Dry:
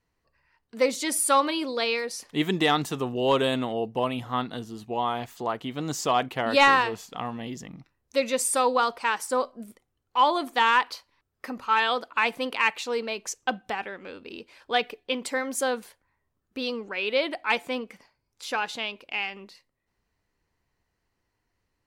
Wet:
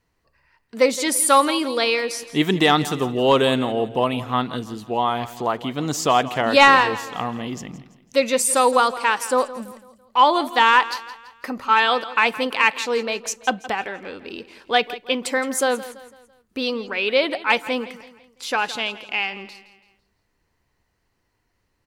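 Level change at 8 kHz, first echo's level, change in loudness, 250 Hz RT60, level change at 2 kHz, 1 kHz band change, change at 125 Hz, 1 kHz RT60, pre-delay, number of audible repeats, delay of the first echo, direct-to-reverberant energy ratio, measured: +6.0 dB, -16.0 dB, +6.0 dB, no reverb, +6.0 dB, +6.0 dB, +6.5 dB, no reverb, no reverb, 3, 167 ms, no reverb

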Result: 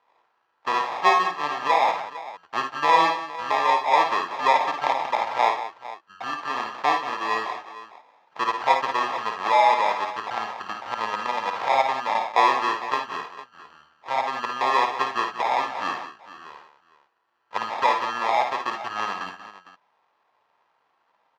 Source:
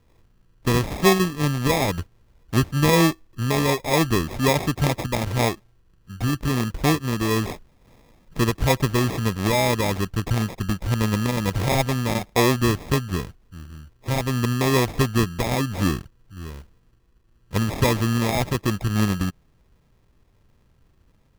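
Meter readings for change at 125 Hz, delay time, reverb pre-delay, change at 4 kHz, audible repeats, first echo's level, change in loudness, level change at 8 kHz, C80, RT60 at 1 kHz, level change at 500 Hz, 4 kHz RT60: under -30 dB, 54 ms, no reverb, -3.5 dB, 3, -7.0 dB, -1.0 dB, under -10 dB, no reverb, no reverb, -4.5 dB, no reverb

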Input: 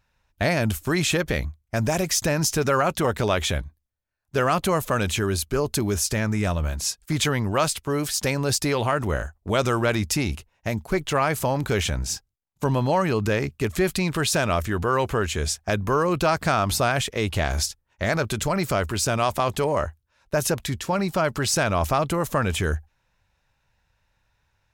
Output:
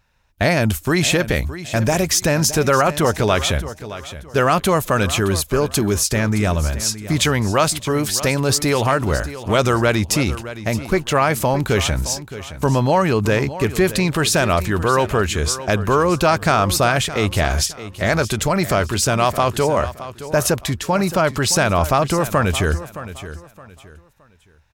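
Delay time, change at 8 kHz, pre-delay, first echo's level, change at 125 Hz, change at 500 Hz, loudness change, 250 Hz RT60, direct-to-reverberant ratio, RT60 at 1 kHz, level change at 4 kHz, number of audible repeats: 618 ms, +5.5 dB, no reverb, -14.0 dB, +5.5 dB, +5.5 dB, +5.5 dB, no reverb, no reverb, no reverb, +5.5 dB, 2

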